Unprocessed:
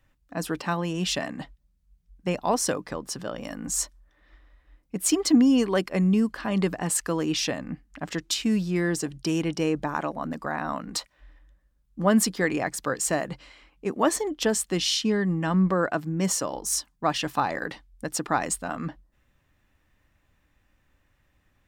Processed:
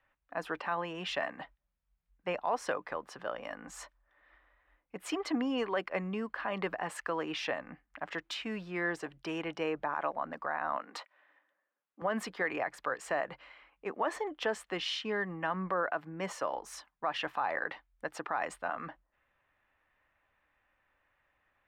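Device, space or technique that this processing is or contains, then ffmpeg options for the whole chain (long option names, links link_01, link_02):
DJ mixer with the lows and highs turned down: -filter_complex "[0:a]acrossover=split=510 2800:gain=0.126 1 0.0631[link_01][link_02][link_03];[link_01][link_02][link_03]amix=inputs=3:normalize=0,alimiter=limit=-21dB:level=0:latency=1:release=69,asettb=1/sr,asplit=3[link_04][link_05][link_06];[link_04]atrim=end=10.774[link_07];[link_05]atrim=start=10.77:end=12.02,asetpts=PTS-STARTPTS,afade=type=in:duration=0.004:curve=qsin,afade=type=out:start_time=1.246:duration=0.004:curve=qsin,highpass=frequency=240:width=0.5412,highpass=frequency=240:width=1.3066[link_08];[link_06]atrim=start=12.016[link_09];[link_07][link_08]acrossfade=duration=0.004:curve1=hsin:curve2=qsin[link_10];[link_10][link_09]acrossfade=duration=0.004:curve1=qsin:curve2=hsin"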